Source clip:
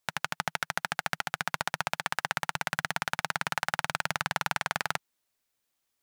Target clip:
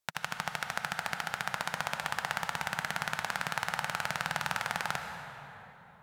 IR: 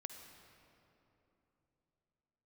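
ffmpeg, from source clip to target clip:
-filter_complex "[1:a]atrim=start_sample=2205,asetrate=33075,aresample=44100[s0];[0:a][s0]afir=irnorm=-1:irlink=0"

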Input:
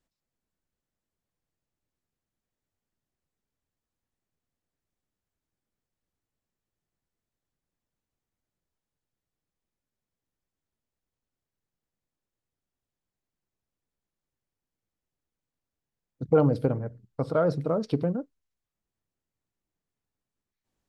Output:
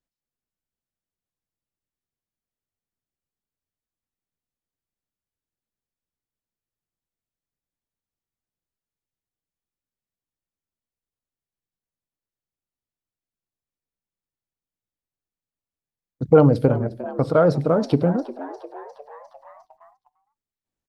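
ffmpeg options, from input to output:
-filter_complex "[0:a]asplit=2[s0][s1];[s1]asplit=6[s2][s3][s4][s5][s6][s7];[s2]adelay=353,afreqshift=100,volume=0.15[s8];[s3]adelay=706,afreqshift=200,volume=0.0912[s9];[s4]adelay=1059,afreqshift=300,volume=0.0556[s10];[s5]adelay=1412,afreqshift=400,volume=0.0339[s11];[s6]adelay=1765,afreqshift=500,volume=0.0207[s12];[s7]adelay=2118,afreqshift=600,volume=0.0126[s13];[s8][s9][s10][s11][s12][s13]amix=inputs=6:normalize=0[s14];[s0][s14]amix=inputs=2:normalize=0,agate=range=0.178:threshold=0.00112:ratio=16:detection=peak,volume=2.37"

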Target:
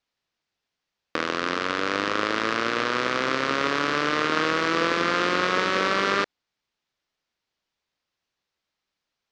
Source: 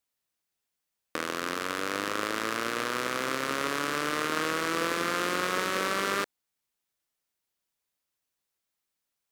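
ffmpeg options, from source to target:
-af "lowpass=f=5400:w=0.5412,lowpass=f=5400:w=1.3066,volume=2"

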